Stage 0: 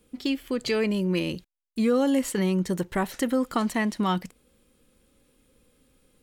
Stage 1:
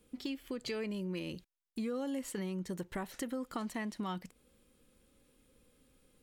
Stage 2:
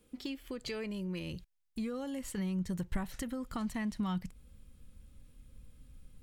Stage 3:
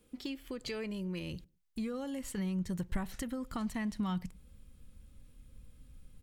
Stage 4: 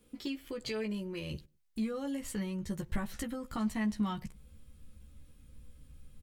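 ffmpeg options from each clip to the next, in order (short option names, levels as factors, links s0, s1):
-af "acompressor=threshold=0.0178:ratio=2.5,volume=0.596"
-af "asubboost=boost=11:cutoff=120"
-filter_complex "[0:a]asplit=2[s0][s1];[s1]adelay=100,lowpass=f=800:p=1,volume=0.0708,asplit=2[s2][s3];[s3]adelay=100,lowpass=f=800:p=1,volume=0.21[s4];[s0][s2][s4]amix=inputs=3:normalize=0"
-filter_complex "[0:a]asplit=2[s0][s1];[s1]adelay=14,volume=0.631[s2];[s0][s2]amix=inputs=2:normalize=0"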